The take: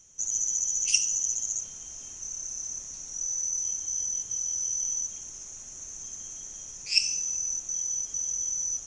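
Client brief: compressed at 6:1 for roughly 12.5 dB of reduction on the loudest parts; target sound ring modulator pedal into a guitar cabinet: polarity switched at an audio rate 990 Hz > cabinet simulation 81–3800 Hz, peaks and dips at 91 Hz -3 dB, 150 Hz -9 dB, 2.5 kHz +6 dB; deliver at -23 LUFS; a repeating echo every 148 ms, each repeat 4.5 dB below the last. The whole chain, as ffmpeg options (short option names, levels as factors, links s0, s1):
-af "acompressor=threshold=0.0251:ratio=6,aecho=1:1:148|296|444|592|740|888|1036|1184|1332:0.596|0.357|0.214|0.129|0.0772|0.0463|0.0278|0.0167|0.01,aeval=exprs='val(0)*sgn(sin(2*PI*990*n/s))':c=same,highpass=81,equalizer=f=91:t=q:w=4:g=-3,equalizer=f=150:t=q:w=4:g=-9,equalizer=f=2500:t=q:w=4:g=6,lowpass=f=3800:w=0.5412,lowpass=f=3800:w=1.3066,volume=7.94"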